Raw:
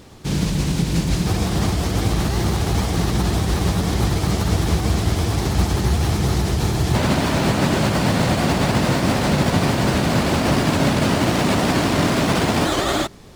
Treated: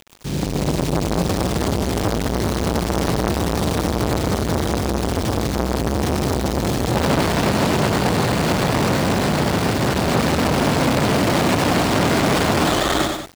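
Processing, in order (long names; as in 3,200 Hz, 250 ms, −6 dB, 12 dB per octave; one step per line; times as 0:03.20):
bit-depth reduction 6 bits, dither none
automatic gain control
on a send: loudspeakers that aren't time-aligned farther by 33 metres −6 dB, 65 metres −12 dB
on the sum: saturating transformer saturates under 900 Hz
level −2 dB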